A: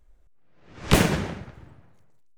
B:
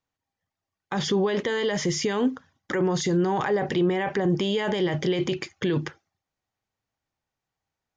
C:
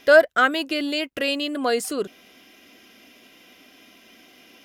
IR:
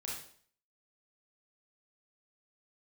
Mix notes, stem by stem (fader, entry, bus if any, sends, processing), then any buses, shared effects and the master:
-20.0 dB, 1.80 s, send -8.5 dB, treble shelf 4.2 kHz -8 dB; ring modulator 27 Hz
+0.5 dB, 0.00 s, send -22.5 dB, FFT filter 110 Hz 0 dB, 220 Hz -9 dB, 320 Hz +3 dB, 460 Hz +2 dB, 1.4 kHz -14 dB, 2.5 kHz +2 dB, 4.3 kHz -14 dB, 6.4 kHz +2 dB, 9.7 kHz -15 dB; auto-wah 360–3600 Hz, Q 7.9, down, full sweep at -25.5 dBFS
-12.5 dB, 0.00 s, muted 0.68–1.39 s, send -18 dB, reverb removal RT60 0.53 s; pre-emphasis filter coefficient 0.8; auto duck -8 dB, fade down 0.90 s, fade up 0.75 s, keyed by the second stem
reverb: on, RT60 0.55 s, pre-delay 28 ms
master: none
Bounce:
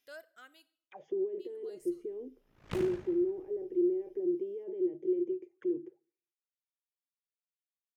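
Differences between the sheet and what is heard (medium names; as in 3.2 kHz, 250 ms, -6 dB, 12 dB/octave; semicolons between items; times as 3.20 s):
stem B +0.5 dB -> -6.5 dB; stem C -12.5 dB -> -22.5 dB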